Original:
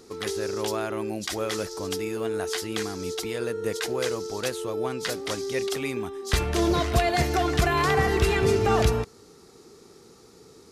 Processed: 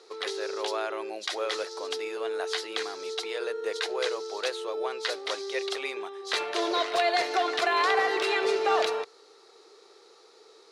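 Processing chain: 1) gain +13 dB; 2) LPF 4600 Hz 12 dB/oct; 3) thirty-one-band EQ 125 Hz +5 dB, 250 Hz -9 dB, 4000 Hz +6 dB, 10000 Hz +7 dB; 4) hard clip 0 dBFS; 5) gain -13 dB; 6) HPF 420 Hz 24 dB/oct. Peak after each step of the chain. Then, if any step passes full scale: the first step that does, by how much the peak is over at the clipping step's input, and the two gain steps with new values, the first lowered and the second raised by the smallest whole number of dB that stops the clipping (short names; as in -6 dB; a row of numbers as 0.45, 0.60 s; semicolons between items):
+3.0, +2.5, +4.5, 0.0, -13.0, -11.5 dBFS; step 1, 4.5 dB; step 1 +8 dB, step 5 -8 dB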